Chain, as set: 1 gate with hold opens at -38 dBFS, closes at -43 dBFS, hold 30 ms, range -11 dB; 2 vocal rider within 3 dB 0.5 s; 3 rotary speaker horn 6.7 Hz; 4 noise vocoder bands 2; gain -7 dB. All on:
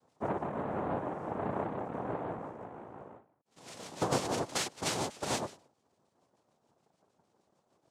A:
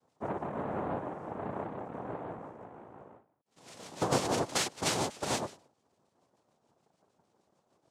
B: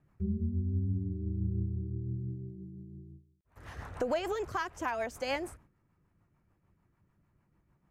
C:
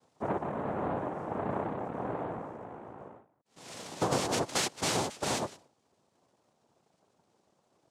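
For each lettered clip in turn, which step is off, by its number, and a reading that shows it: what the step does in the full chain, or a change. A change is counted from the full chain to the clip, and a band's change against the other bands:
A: 2, crest factor change +1.5 dB; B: 4, 8 kHz band -13.5 dB; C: 3, 4 kHz band +1.5 dB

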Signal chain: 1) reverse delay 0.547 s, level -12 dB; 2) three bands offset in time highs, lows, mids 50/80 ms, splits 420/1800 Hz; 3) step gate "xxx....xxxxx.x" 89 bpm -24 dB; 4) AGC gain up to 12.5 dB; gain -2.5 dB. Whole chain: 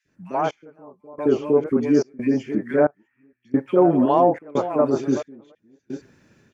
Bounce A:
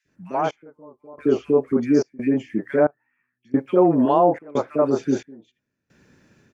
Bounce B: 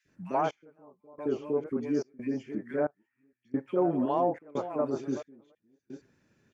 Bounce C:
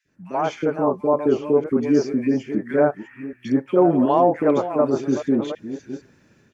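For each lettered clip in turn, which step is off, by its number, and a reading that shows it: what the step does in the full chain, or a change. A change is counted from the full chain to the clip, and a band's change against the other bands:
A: 1, momentary loudness spread change -4 LU; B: 4, momentary loudness spread change -2 LU; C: 3, momentary loudness spread change +2 LU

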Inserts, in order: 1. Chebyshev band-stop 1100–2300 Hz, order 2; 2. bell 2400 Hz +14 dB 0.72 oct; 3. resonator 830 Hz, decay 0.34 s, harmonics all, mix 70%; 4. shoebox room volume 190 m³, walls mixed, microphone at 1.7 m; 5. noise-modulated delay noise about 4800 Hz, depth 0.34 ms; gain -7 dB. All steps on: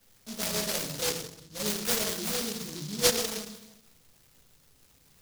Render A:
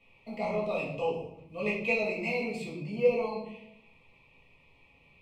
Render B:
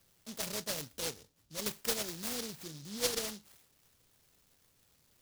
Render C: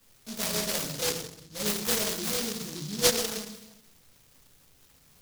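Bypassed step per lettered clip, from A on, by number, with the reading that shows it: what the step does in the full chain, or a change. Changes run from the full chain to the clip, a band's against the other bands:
5, 4 kHz band -19.0 dB; 4, loudness change -7.5 LU; 1, loudness change +1.0 LU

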